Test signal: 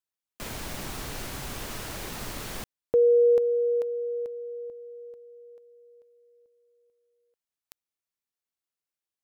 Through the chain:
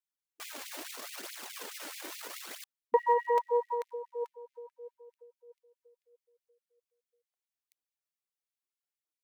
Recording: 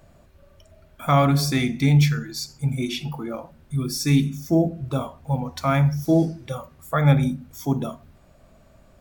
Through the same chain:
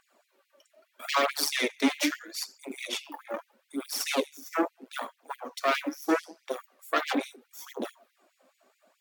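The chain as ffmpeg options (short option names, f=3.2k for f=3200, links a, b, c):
-af "aeval=exprs='0.562*(cos(1*acos(clip(val(0)/0.562,-1,1)))-cos(1*PI/2))+0.126*(cos(8*acos(clip(val(0)/0.562,-1,1)))-cos(8*PI/2))':c=same,aphaser=in_gain=1:out_gain=1:delay=4:decay=0.47:speed=0.77:type=triangular,afftfilt=real='re*gte(b*sr/1024,210*pow(2000/210,0.5+0.5*sin(2*PI*4.7*pts/sr)))':imag='im*gte(b*sr/1024,210*pow(2000/210,0.5+0.5*sin(2*PI*4.7*pts/sr)))':win_size=1024:overlap=0.75,volume=-6dB"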